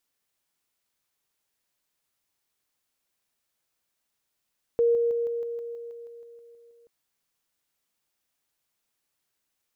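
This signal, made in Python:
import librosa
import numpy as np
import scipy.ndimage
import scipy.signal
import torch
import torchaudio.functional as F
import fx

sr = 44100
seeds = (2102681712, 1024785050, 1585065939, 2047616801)

y = fx.level_ladder(sr, hz=469.0, from_db=-18.0, step_db=-3.0, steps=13, dwell_s=0.16, gap_s=0.0)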